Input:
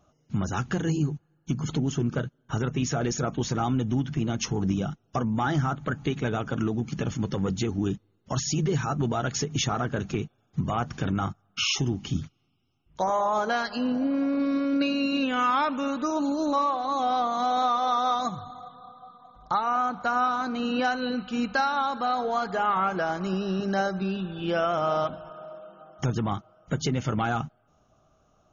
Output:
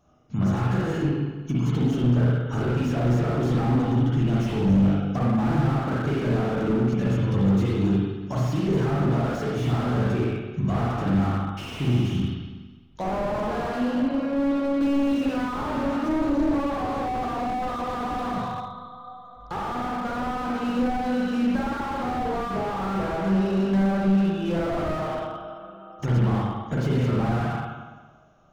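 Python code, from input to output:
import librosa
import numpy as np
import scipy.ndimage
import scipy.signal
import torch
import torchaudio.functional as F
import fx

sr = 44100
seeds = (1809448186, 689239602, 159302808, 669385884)

y = fx.comb(x, sr, ms=5.2, depth=0.48, at=(22.29, 22.72))
y = fx.rev_spring(y, sr, rt60_s=1.3, pass_ms=(41, 57), chirp_ms=70, drr_db=-6.0)
y = fx.slew_limit(y, sr, full_power_hz=41.0)
y = F.gain(torch.from_numpy(y), -1.5).numpy()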